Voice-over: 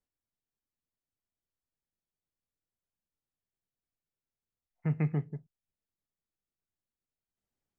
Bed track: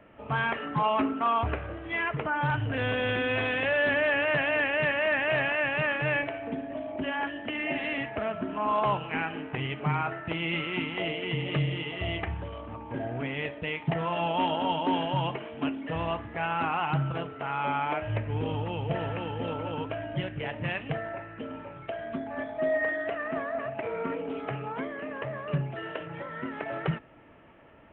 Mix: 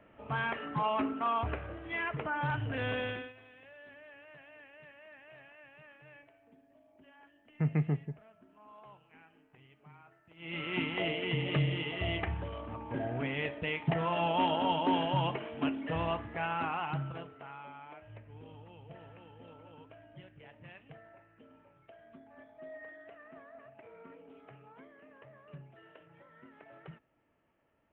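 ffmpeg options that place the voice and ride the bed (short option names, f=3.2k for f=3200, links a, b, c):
-filter_complex "[0:a]adelay=2750,volume=0dB[a];[1:a]volume=21dB,afade=t=out:st=2.97:d=0.36:silence=0.0707946,afade=t=in:st=10.36:d=0.44:silence=0.0473151,afade=t=out:st=15.99:d=1.71:silence=0.11885[b];[a][b]amix=inputs=2:normalize=0"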